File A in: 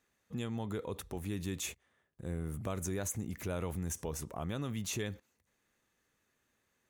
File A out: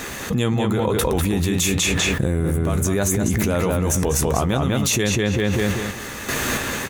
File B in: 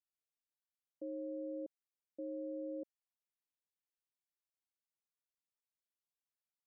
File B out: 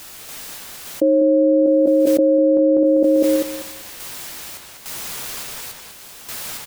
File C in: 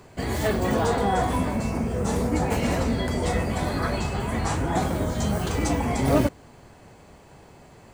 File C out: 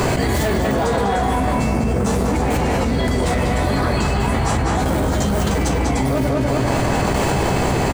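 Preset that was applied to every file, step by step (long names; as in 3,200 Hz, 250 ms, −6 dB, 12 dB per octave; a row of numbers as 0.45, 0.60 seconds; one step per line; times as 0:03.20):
sample-and-hold tremolo 3.5 Hz, depth 75%
gain into a clipping stage and back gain 23 dB
double-tracking delay 15 ms −11 dB
on a send: feedback echo with a low-pass in the loop 197 ms, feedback 21%, low-pass 4,900 Hz, level −4 dB
on the sum: envelope flattener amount 100%
normalise the peak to −6 dBFS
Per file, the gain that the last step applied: +14.5, +25.0, +4.0 decibels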